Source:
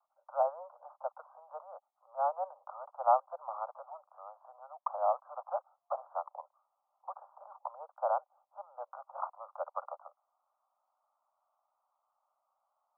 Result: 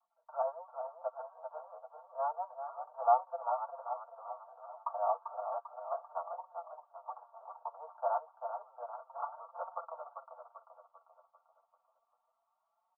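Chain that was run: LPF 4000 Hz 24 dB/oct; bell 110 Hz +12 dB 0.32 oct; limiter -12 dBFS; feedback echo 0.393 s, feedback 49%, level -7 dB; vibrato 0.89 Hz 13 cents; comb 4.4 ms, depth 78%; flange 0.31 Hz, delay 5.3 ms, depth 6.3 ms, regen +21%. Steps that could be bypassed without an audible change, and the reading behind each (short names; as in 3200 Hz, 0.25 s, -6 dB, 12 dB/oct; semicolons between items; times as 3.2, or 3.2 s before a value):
LPF 4000 Hz: input band ends at 1500 Hz; bell 110 Hz: input band starts at 450 Hz; limiter -12 dBFS: input peak -15.0 dBFS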